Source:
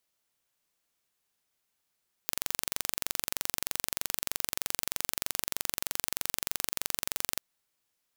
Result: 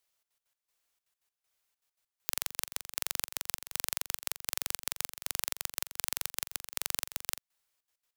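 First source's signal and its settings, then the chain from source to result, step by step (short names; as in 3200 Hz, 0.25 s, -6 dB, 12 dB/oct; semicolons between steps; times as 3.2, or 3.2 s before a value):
pulse train 23.2/s, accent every 0, -2.5 dBFS 5.09 s
bell 200 Hz -11 dB 1.6 oct; step gate "xxx.x.x..x" 198 bpm -12 dB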